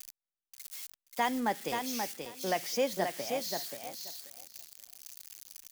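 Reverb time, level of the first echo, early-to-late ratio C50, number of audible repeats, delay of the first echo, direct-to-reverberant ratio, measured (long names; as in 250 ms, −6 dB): no reverb audible, −5.5 dB, no reverb audible, 2, 531 ms, no reverb audible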